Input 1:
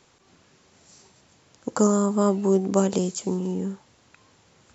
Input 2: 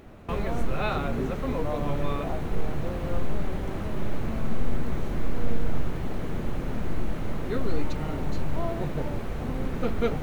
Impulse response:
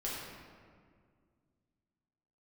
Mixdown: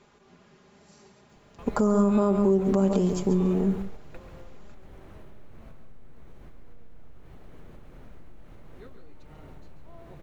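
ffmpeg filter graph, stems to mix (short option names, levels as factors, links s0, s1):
-filter_complex "[0:a]lowpass=f=1700:p=1,aecho=1:1:4.9:0.61,volume=1.19,asplit=3[s0][s1][s2];[s1]volume=0.316[s3];[1:a]equalizer=f=220:w=1.7:g=-3.5,acompressor=threshold=0.0447:ratio=10,adelay=1300,volume=0.531,asplit=2[s4][s5];[s5]volume=0.119[s6];[s2]apad=whole_len=508390[s7];[s4][s7]sidechaingate=range=0.398:threshold=0.00224:ratio=16:detection=peak[s8];[s3][s6]amix=inputs=2:normalize=0,aecho=0:1:138:1[s9];[s0][s8][s9]amix=inputs=3:normalize=0,alimiter=limit=0.224:level=0:latency=1:release=139"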